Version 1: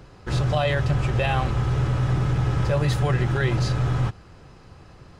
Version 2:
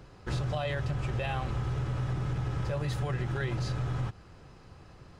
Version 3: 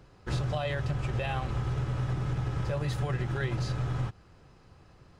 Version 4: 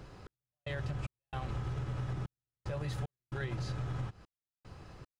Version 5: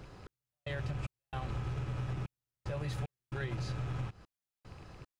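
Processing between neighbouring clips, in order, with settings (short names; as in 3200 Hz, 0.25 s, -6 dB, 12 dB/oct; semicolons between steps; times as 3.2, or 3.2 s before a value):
compressor, threshold -23 dBFS, peak gain reduction 6.5 dB; gain -5 dB
upward expander 1.5:1, over -41 dBFS; gain +2 dB
compressor 4:1, threshold -41 dBFS, peak gain reduction 12.5 dB; step gate "xx...xxx..xxxxx" 113 bpm -60 dB; gain +5 dB
rattling part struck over -47 dBFS, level -47 dBFS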